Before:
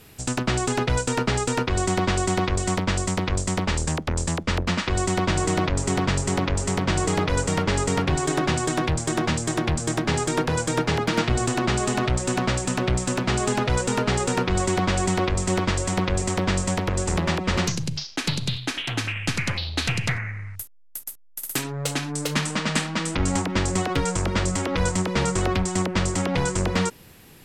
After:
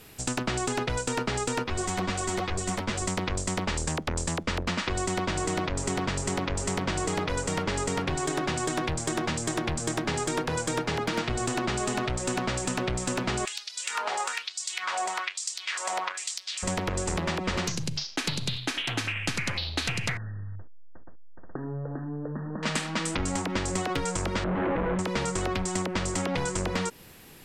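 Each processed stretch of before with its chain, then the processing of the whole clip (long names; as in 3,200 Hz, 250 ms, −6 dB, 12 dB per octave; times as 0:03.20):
0:01.64–0:03.02: high-shelf EQ 11,000 Hz +5.5 dB + string-ensemble chorus
0:13.45–0:16.63: downward compressor, threshold −23 dBFS + auto-filter high-pass sine 1.1 Hz 710–5,000 Hz
0:20.17–0:22.63: tilt shelving filter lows +9.5 dB, about 920 Hz + downward compressor 5 to 1, threshold −30 dBFS + linear-phase brick-wall low-pass 1,900 Hz
0:24.44–0:24.99: comb filter 6 ms, depth 79% + comparator with hysteresis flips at −36 dBFS + Gaussian smoothing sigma 4.5 samples
whole clip: parametric band 87 Hz −4.5 dB 2.5 octaves; downward compressor, threshold −25 dBFS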